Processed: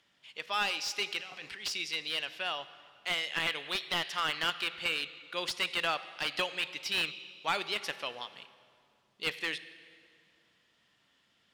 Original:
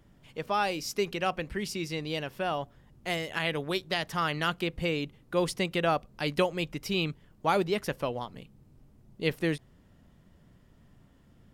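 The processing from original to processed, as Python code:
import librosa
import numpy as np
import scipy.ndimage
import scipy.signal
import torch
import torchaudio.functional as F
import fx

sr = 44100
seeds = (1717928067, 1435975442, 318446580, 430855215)

y = fx.over_compress(x, sr, threshold_db=-40.0, ratio=-1.0, at=(1.19, 1.68), fade=0.02)
y = fx.bandpass_q(y, sr, hz=3400.0, q=1.3)
y = fx.rev_plate(y, sr, seeds[0], rt60_s=2.4, hf_ratio=0.75, predelay_ms=0, drr_db=13.0)
y = fx.slew_limit(y, sr, full_power_hz=65.0)
y = F.gain(torch.from_numpy(y), 7.0).numpy()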